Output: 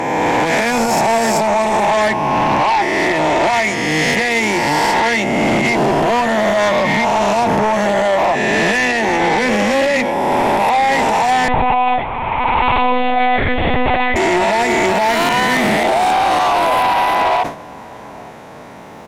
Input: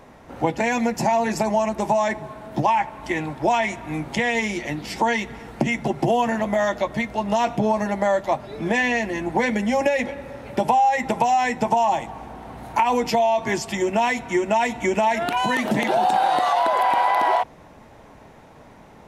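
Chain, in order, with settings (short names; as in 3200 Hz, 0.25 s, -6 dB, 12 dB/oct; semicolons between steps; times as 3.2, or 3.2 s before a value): spectral swells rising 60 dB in 2.03 s; HPF 190 Hz 6 dB/oct; limiter -12 dBFS, peak gain reduction 9.5 dB; sine folder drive 4 dB, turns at -12 dBFS; outdoor echo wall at 150 m, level -23 dB; 11.48–14.16 monotone LPC vocoder at 8 kHz 250 Hz; sustainer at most 130 dB/s; gain +1.5 dB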